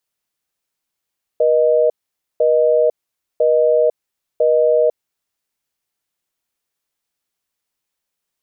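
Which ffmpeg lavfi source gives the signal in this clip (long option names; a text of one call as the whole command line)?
ffmpeg -f lavfi -i "aevalsrc='0.211*(sin(2*PI*480*t)+sin(2*PI*620*t))*clip(min(mod(t,1),0.5-mod(t,1))/0.005,0,1)':duration=3.95:sample_rate=44100" out.wav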